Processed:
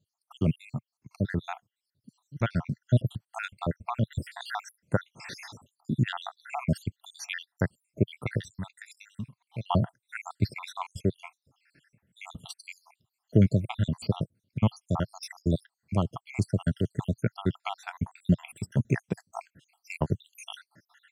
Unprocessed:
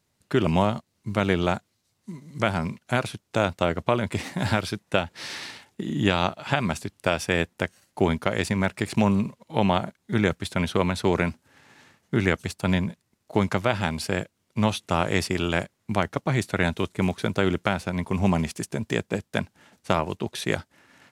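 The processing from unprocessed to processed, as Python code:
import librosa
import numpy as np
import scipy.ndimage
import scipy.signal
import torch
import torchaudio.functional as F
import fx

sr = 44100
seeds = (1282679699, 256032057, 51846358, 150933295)

y = fx.spec_dropout(x, sr, seeds[0], share_pct=76)
y = fx.tone_stack(y, sr, knobs='5-5-5', at=(8.37, 9.69), fade=0.02)
y = fx.rider(y, sr, range_db=4, speed_s=0.5)
y = fx.peak_eq(y, sr, hz=120.0, db=13.5, octaves=1.7)
y = y * librosa.db_to_amplitude(-5.0)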